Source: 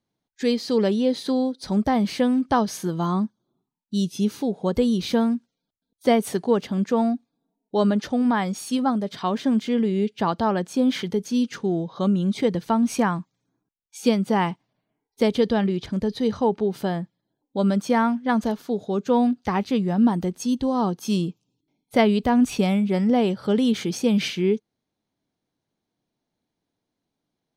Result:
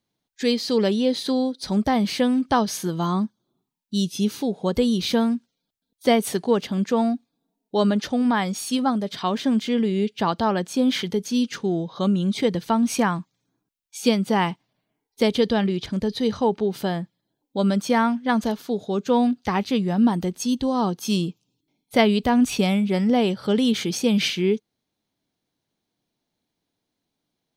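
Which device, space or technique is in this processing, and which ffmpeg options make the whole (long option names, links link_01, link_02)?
presence and air boost: -af "equalizer=frequency=3500:width_type=o:width=1.7:gain=4.5,highshelf=frequency=9200:gain=6.5"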